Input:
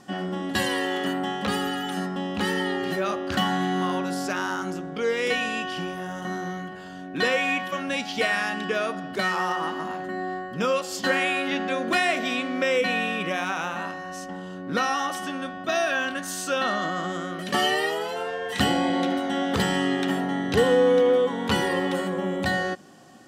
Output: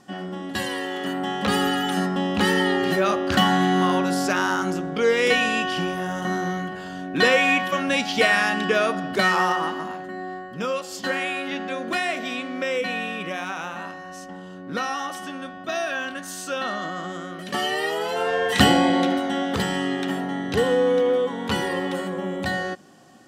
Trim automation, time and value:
0.94 s -2.5 dB
1.62 s +5.5 dB
9.42 s +5.5 dB
10.07 s -2.5 dB
17.68 s -2.5 dB
18.39 s +8.5 dB
19.65 s -1 dB

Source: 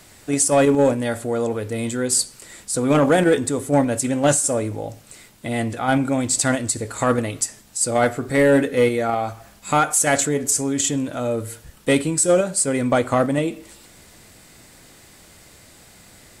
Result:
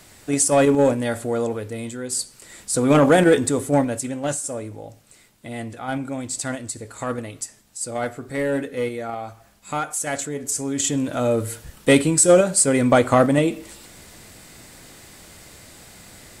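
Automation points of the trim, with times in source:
1.39 s -0.5 dB
2.02 s -8 dB
2.78 s +1.5 dB
3.60 s +1.5 dB
4.21 s -8 dB
10.30 s -8 dB
11.20 s +3 dB

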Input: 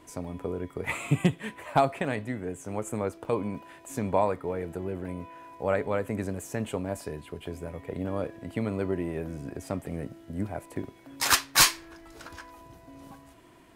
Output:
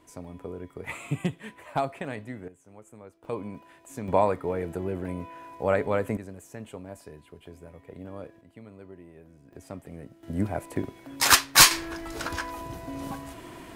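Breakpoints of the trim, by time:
-5 dB
from 2.48 s -17 dB
from 3.24 s -5 dB
from 4.08 s +2.5 dB
from 6.17 s -9 dB
from 8.41 s -17 dB
from 9.53 s -7.5 dB
from 10.23 s +4.5 dB
from 11.71 s +12 dB

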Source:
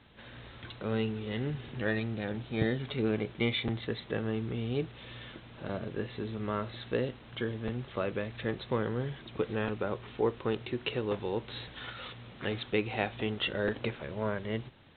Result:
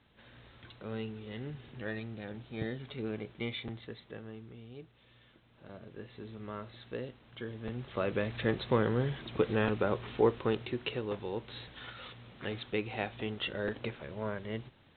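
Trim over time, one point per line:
3.55 s -7.5 dB
4.74 s -16.5 dB
5.27 s -16.5 dB
6.28 s -8.5 dB
7.35 s -8.5 dB
8.26 s +3 dB
10.22 s +3 dB
11.09 s -4 dB

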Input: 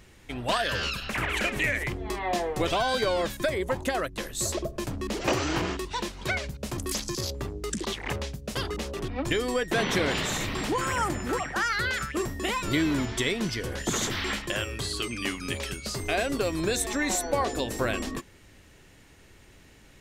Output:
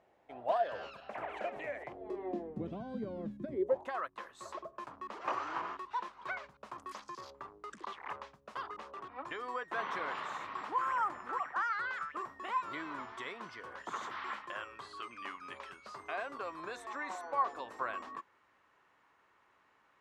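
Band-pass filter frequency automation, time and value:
band-pass filter, Q 3.5
1.92 s 700 Hz
2.52 s 210 Hz
3.48 s 210 Hz
3.92 s 1.1 kHz

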